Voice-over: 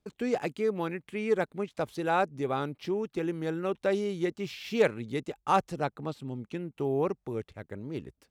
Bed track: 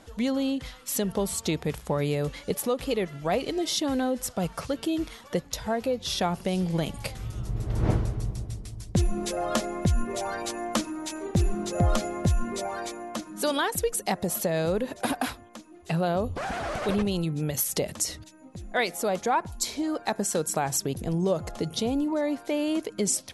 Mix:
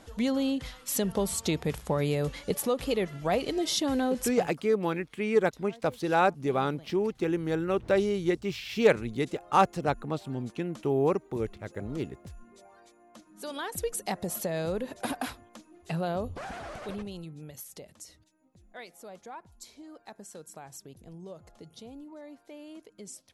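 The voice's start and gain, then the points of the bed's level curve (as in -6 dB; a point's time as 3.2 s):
4.05 s, +3.0 dB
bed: 4.27 s -1 dB
4.56 s -23 dB
12.94 s -23 dB
13.85 s -5 dB
16.18 s -5 dB
17.84 s -19 dB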